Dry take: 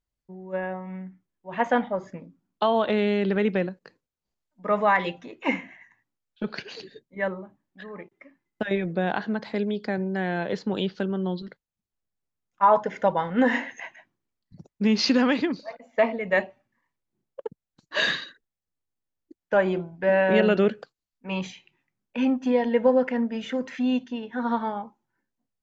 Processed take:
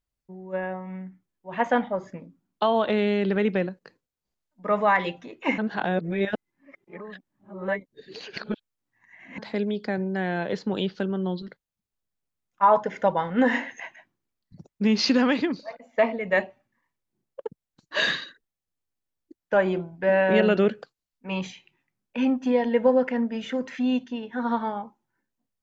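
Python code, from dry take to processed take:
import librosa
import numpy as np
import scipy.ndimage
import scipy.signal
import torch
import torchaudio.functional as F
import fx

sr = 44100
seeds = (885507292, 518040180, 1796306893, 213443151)

y = fx.edit(x, sr, fx.reverse_span(start_s=5.58, length_s=3.8), tone=tone)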